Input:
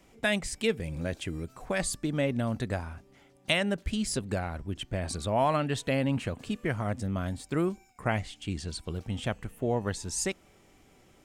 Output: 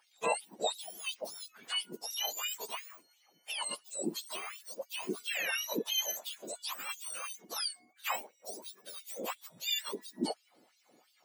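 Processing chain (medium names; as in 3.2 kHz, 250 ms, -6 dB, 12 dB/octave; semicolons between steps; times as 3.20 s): spectrum inverted on a logarithmic axis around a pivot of 1.3 kHz; LFO high-pass sine 2.9 Hz 320–3600 Hz; trim -4.5 dB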